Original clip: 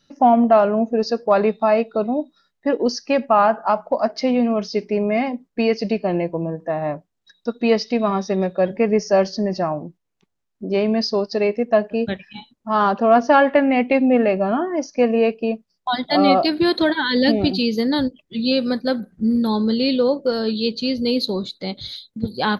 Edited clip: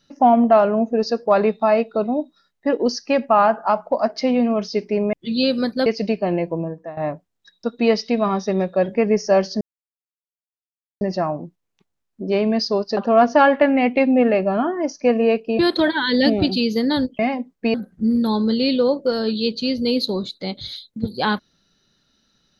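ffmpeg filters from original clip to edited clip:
-filter_complex "[0:a]asplit=9[s0][s1][s2][s3][s4][s5][s6][s7][s8];[s0]atrim=end=5.132[s9];[s1]atrim=start=18.208:end=18.942[s10];[s2]atrim=start=5.678:end=6.79,asetpts=PTS-STARTPTS,afade=t=out:st=0.742:d=0.37:silence=0.158489[s11];[s3]atrim=start=6.79:end=9.43,asetpts=PTS-STARTPTS,afade=t=in:d=0.004:c=hsin:silence=0.158489,afade=t=out:st=2.636:d=0.004:c=hsin,apad=pad_dur=1.4[s12];[s4]atrim=start=9.43:end=11.392,asetpts=PTS-STARTPTS,afade=t=in:d=0.004:c=hsin[s13];[s5]atrim=start=12.908:end=15.532[s14];[s6]atrim=start=16.608:end=18.212[s15];[s7]atrim=start=5.128:end=5.682[s16];[s8]atrim=start=18.938[s17];[s9][s10]acrossfade=d=0.004:c1=hsin:c2=hsin[s18];[s11][s12][s13]concat=n=3:v=0:a=1[s19];[s18][s19]acrossfade=d=0.004:c1=hsin:c2=hsin[s20];[s20][s14]acrossfade=d=0.004:c1=hsin:c2=hsin[s21];[s21][s15]acrossfade=d=0.004:c1=hsin:c2=hsin[s22];[s22][s16]acrossfade=d=0.004:c1=hsin:c2=hsin[s23];[s23][s17]acrossfade=d=0.004:c1=hsin:c2=hsin"

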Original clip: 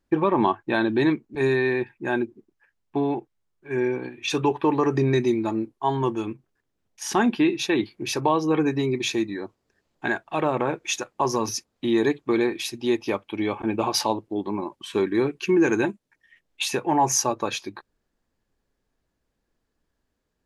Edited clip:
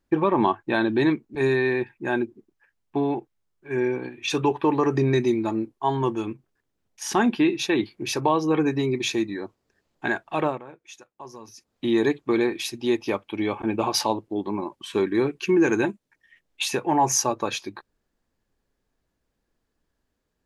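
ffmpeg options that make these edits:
-filter_complex "[0:a]asplit=3[s0][s1][s2];[s0]atrim=end=10.6,asetpts=PTS-STARTPTS,afade=t=out:st=10.46:d=0.14:silence=0.125893[s3];[s1]atrim=start=10.6:end=11.57,asetpts=PTS-STARTPTS,volume=0.126[s4];[s2]atrim=start=11.57,asetpts=PTS-STARTPTS,afade=t=in:d=0.14:silence=0.125893[s5];[s3][s4][s5]concat=n=3:v=0:a=1"

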